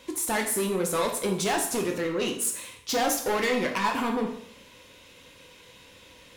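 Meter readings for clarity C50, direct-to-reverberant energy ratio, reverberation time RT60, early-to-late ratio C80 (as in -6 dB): 7.0 dB, 2.0 dB, 0.65 s, 10.5 dB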